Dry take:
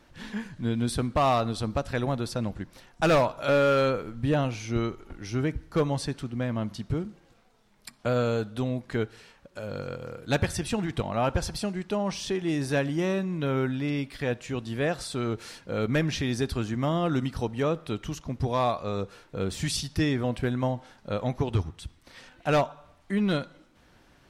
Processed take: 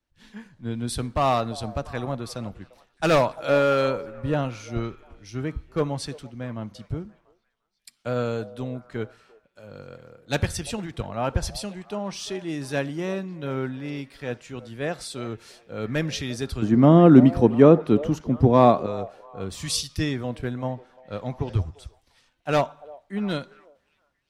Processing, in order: 16.62–18.86 bell 270 Hz +12 dB 2.3 oct; delay with a stepping band-pass 0.346 s, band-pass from 600 Hz, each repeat 0.7 oct, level -11.5 dB; three-band expander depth 70%; gain -1 dB

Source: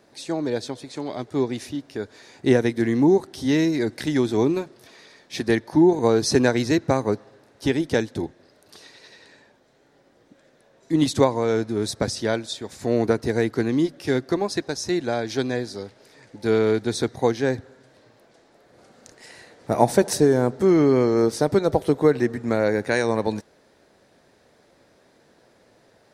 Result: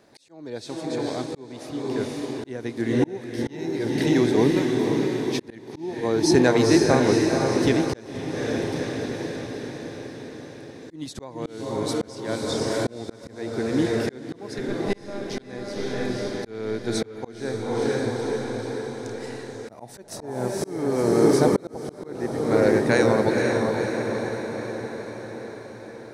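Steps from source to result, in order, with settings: 14.58–15.3 monotone LPC vocoder at 8 kHz 200 Hz; diffused feedback echo 0.5 s, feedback 64%, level -3 dB; auto swell 0.659 s

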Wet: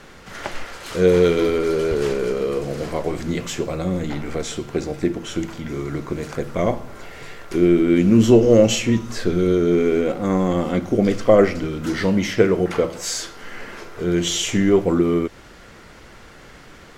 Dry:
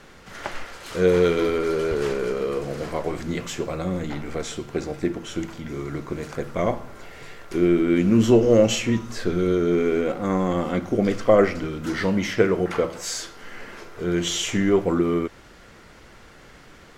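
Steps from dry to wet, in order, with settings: dynamic EQ 1300 Hz, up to -4 dB, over -37 dBFS, Q 0.78; gain +4 dB

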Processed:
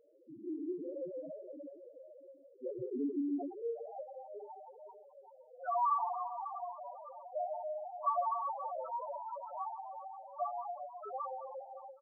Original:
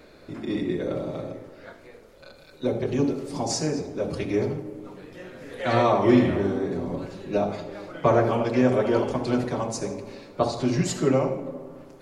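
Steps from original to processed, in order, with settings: Wiener smoothing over 25 samples; differentiator; reverb RT60 3.3 s, pre-delay 14 ms, DRR 1.5 dB; in parallel at -1 dB: compressor 6:1, threshold -53 dBFS, peak gain reduction 22 dB; on the sum: overloaded stage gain 35 dB; on a send: feedback echo 0.306 s, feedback 54%, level -23 dB; on the sum: high-pass sweep 110 Hz -> 850 Hz, 2.72–4.06; air absorption 430 m; loudest bins only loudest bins 2; ending taper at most 150 dB/s; gain +14 dB

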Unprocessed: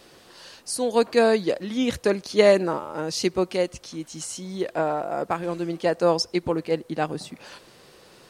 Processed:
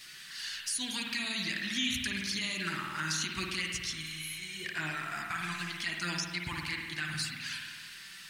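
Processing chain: spectral repair 4.06–4.63, 710–10000 Hz before; EQ curve 140 Hz 0 dB, 320 Hz -9 dB, 490 Hz -29 dB, 1700 Hz +15 dB, 2500 Hz +14 dB; limiter -16 dBFS, peak gain reduction 18 dB; envelope flanger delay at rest 9.6 ms, full sweep at -23 dBFS; spring tank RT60 1.5 s, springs 51 ms, chirp 55 ms, DRR 0.5 dB; crackle 150/s -44 dBFS; gain -5 dB

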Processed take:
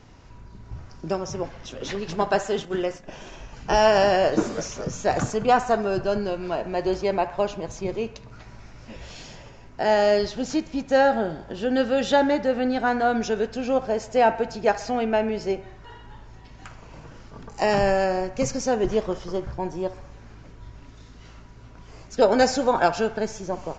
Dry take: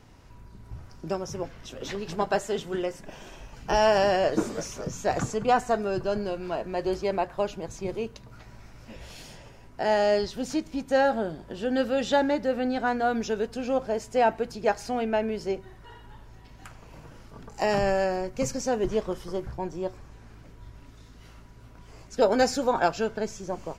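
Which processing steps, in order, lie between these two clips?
band-limited delay 64 ms, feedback 60%, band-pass 1300 Hz, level -13 dB; 2.65–3.08 gate -37 dBFS, range -7 dB; downsampling 16000 Hz; gain +3.5 dB

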